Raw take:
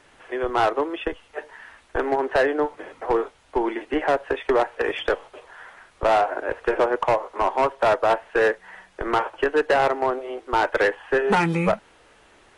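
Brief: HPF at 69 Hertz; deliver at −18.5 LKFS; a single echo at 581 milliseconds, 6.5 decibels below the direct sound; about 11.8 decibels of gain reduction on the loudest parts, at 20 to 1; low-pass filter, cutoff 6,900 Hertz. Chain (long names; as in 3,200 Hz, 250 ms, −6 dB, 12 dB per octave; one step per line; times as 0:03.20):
high-pass filter 69 Hz
low-pass filter 6,900 Hz
downward compressor 20 to 1, threshold −27 dBFS
single-tap delay 581 ms −6.5 dB
level +14 dB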